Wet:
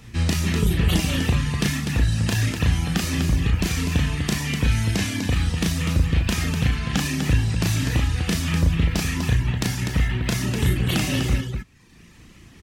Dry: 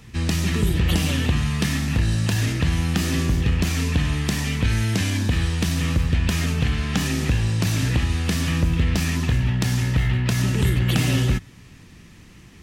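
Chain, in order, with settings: reverb removal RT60 1.2 s; on a send: loudspeakers at several distances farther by 12 m -3 dB, 85 m -6 dB

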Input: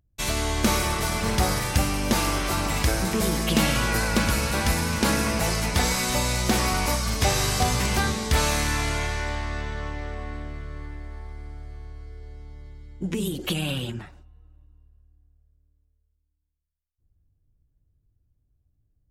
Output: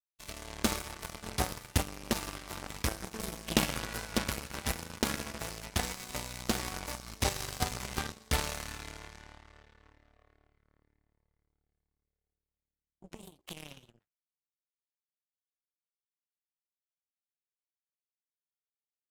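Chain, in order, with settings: power-law curve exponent 3

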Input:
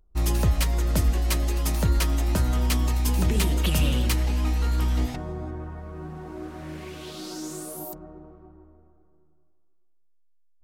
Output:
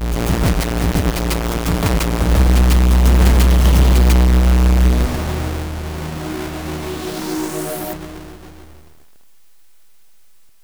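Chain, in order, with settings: half-waves squared off; in parallel at +1 dB: limiter -23 dBFS, peak gain reduction 31 dB; on the sum: requantised 10-bit, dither triangular; reverse echo 0.145 s -4 dB

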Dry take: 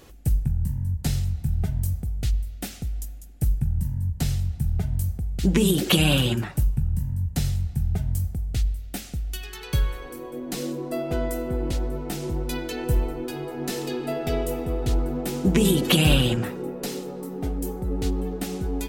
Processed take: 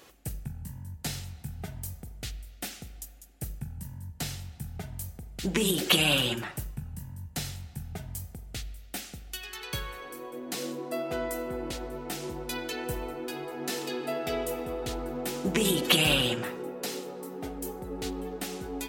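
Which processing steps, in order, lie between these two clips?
LPF 1200 Hz 6 dB/oct; tilt +4.5 dB/oct; on a send: reverb RT60 0.60 s, pre-delay 40 ms, DRR 15.5 dB; on the sum: gain +1 dB

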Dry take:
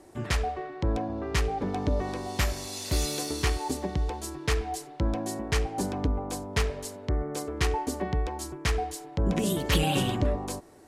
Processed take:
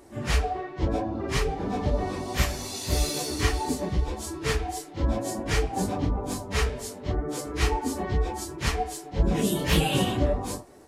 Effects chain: phase scrambler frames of 0.1 s; gain +2 dB

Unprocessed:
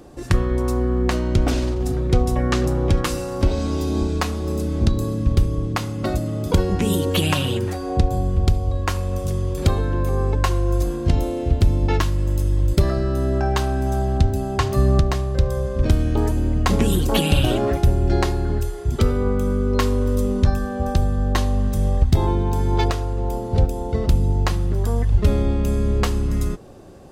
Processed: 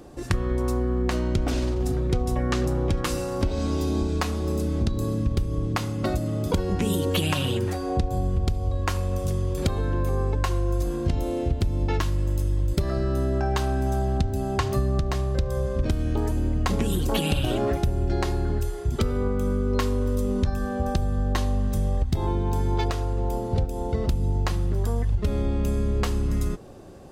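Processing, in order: compressor, threshold -18 dBFS, peak gain reduction 8.5 dB; gain -1.5 dB

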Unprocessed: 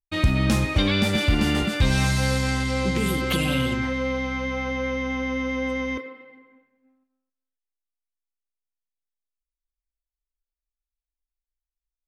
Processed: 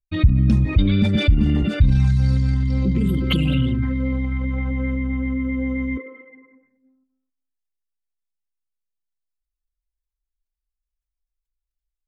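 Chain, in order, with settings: formant sharpening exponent 2; bell 500 Hz -7 dB 1.6 oct; gain +6 dB

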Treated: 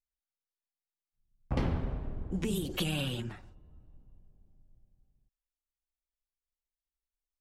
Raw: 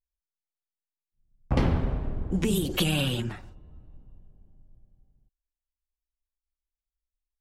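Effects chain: high shelf 11000 Hz -2.5 dB; gain -7 dB

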